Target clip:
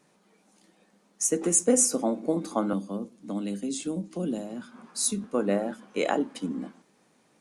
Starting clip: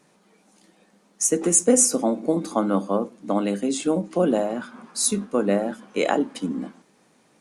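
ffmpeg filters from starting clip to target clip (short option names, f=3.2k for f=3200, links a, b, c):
-filter_complex "[0:a]asettb=1/sr,asplit=3[a][b][c];[a]atrim=end=2.734[d];[b]atrim=start=2.73:end=5.24,asetpts=PTS-STARTPTS,afade=t=in:d=0.004:c=qsin,afade=t=out:st=2.506:d=0.004:c=qsin,acrossover=split=320|3000[e][f][g];[f]acompressor=threshold=-42dB:ratio=2.5[h];[e][h][g]amix=inputs=3:normalize=0[i];[c]atrim=start=5.236[j];[d][i]acrossfade=d=0.004:c1=hsin:c2=qsin[k];[k][j]acrossfade=d=0.004:c1=qsin:c2=hsin,volume=-4.5dB"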